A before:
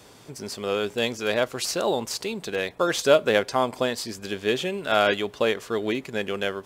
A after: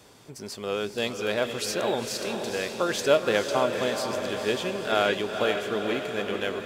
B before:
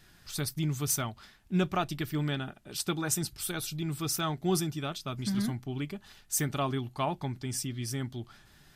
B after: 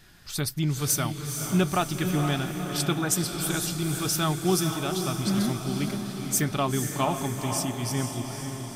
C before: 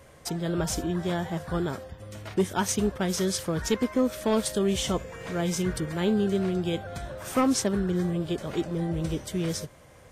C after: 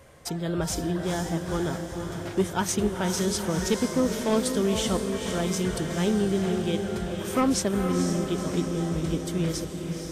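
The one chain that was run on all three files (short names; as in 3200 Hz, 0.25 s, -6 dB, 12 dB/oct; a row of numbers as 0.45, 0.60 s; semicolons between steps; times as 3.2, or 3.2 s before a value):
diffused feedback echo 0.481 s, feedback 60%, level -6 dB; match loudness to -27 LUFS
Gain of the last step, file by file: -3.5, +4.5, 0.0 dB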